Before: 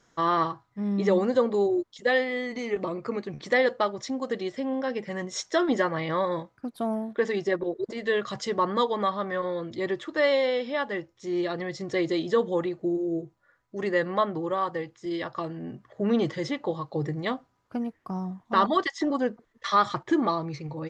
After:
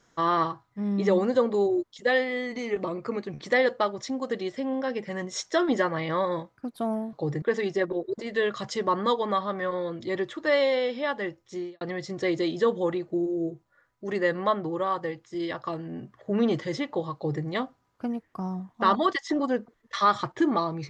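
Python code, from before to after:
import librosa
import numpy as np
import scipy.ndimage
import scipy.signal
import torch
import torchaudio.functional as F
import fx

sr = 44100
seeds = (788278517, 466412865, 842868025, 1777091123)

y = fx.edit(x, sr, fx.fade_out_span(start_s=11.27, length_s=0.25, curve='qua'),
    fx.duplicate(start_s=16.86, length_s=0.29, to_s=7.13), tone=tone)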